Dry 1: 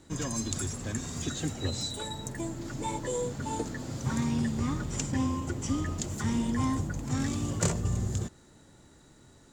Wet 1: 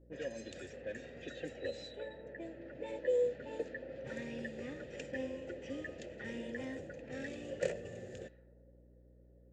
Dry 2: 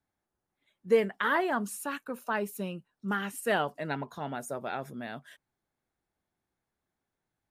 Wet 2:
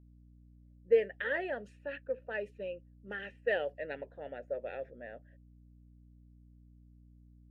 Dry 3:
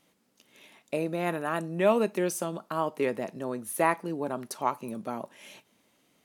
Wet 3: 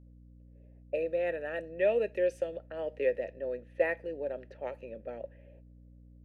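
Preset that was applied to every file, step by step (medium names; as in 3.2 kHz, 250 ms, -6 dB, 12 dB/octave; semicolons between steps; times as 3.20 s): level-controlled noise filter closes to 440 Hz, open at -26.5 dBFS; vowel filter e; hum 60 Hz, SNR 20 dB; trim +6 dB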